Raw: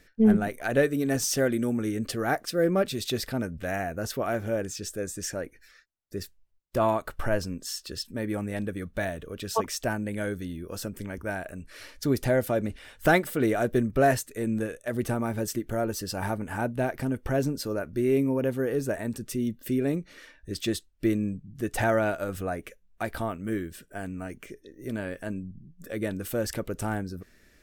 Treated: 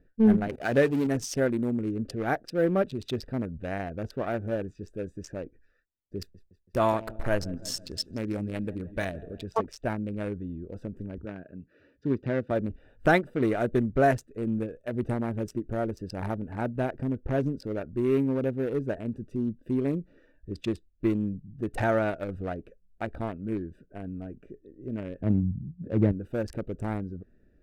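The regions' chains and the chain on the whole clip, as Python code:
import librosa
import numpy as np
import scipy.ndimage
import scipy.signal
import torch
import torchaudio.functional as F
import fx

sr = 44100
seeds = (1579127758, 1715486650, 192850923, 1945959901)

y = fx.chain(x, sr, fx.zero_step(step_db=-30.5),
    fx.highpass(hz=63.0, slope=12), at=(0.49, 1.07))
y = fx.chain(y, sr, fx.high_shelf(hz=2700.0, db=9.0),
    fx.echo_feedback(ms=164, feedback_pct=52, wet_db=-14), at=(6.18, 9.44))
y = fx.chain(y, sr, fx.bandpass_edges(low_hz=130.0, high_hz=4000.0),
    fx.peak_eq(hz=760.0, db=-10.5, octaves=0.79), at=(11.25, 12.51))
y = fx.chain(y, sr, fx.highpass(hz=69.0, slope=24),
    fx.tilt_eq(slope=-4.5), at=(25.21, 26.12))
y = fx.wiener(y, sr, points=41)
y = fx.high_shelf(y, sr, hz=7800.0, db=-12.0)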